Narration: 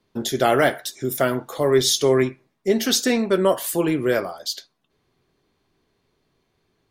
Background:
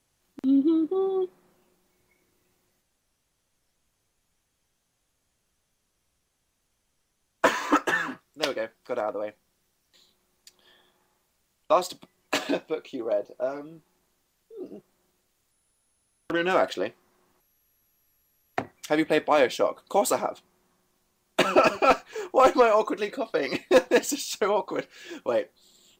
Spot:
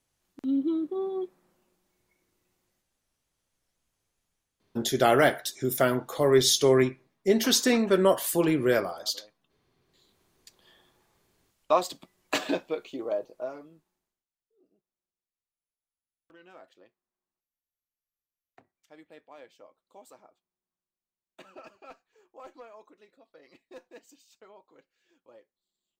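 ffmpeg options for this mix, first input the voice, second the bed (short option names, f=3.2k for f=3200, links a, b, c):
-filter_complex "[0:a]adelay=4600,volume=-3dB[a];[1:a]volume=15.5dB,afade=t=out:st=4.2:d=0.81:silence=0.141254,afade=t=in:st=9.81:d=0.4:silence=0.0891251,afade=t=out:st=12.82:d=1.44:silence=0.0421697[b];[a][b]amix=inputs=2:normalize=0"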